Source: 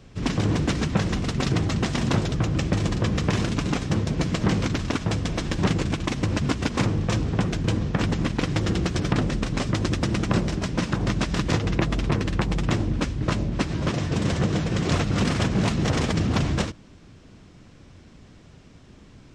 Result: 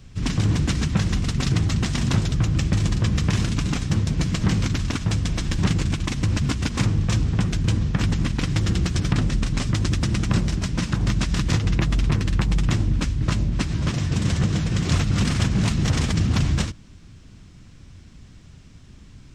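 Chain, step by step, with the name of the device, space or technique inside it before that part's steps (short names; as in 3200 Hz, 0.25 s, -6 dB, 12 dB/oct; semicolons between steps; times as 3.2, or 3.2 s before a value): smiley-face EQ (low shelf 140 Hz +7.5 dB; bell 520 Hz -7.5 dB 1.8 oct; high shelf 6300 Hz +7 dB)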